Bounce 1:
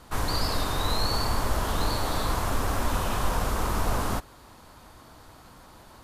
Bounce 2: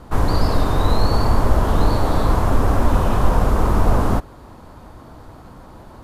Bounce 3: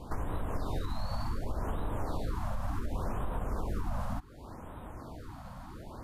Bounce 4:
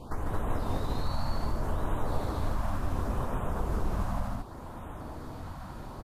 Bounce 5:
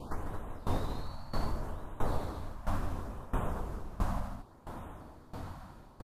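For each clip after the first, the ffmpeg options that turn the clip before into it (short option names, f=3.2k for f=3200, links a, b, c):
-af "tiltshelf=f=1.4k:g=7.5,volume=4.5dB"
-af "alimiter=limit=-12.5dB:level=0:latency=1:release=423,acompressor=threshold=-31dB:ratio=2,afftfilt=real='re*(1-between(b*sr/1024,350*pow(5700/350,0.5+0.5*sin(2*PI*0.68*pts/sr))/1.41,350*pow(5700/350,0.5+0.5*sin(2*PI*0.68*pts/sr))*1.41))':imag='im*(1-between(b*sr/1024,350*pow(5700/350,0.5+0.5*sin(2*PI*0.68*pts/sr))/1.41,350*pow(5700/350,0.5+0.5*sin(2*PI*0.68*pts/sr))*1.41))':win_size=1024:overlap=0.75,volume=-4dB"
-filter_complex "[0:a]flanger=delay=8:depth=4.6:regen=-61:speed=1.9:shape=sinusoidal,asplit=2[a][b];[b]aecho=0:1:148.7|224.5:0.631|0.794[c];[a][c]amix=inputs=2:normalize=0,volume=5dB"
-af "aresample=32000,aresample=44100,bandreject=f=60:t=h:w=6,bandreject=f=120:t=h:w=6,aeval=exprs='val(0)*pow(10,-18*if(lt(mod(1.5*n/s,1),2*abs(1.5)/1000),1-mod(1.5*n/s,1)/(2*abs(1.5)/1000),(mod(1.5*n/s,1)-2*abs(1.5)/1000)/(1-2*abs(1.5)/1000))/20)':c=same,volume=1.5dB"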